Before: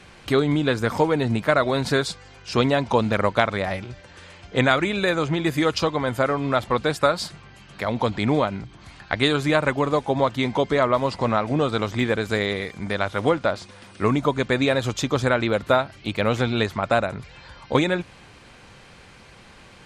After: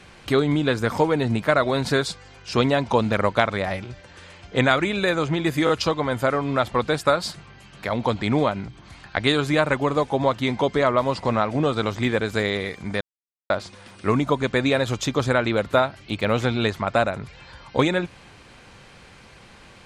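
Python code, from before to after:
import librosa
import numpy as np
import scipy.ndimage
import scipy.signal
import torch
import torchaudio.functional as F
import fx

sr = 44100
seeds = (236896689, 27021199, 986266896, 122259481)

y = fx.edit(x, sr, fx.stutter(start_s=5.65, slice_s=0.02, count=3),
    fx.silence(start_s=12.97, length_s=0.49), tone=tone)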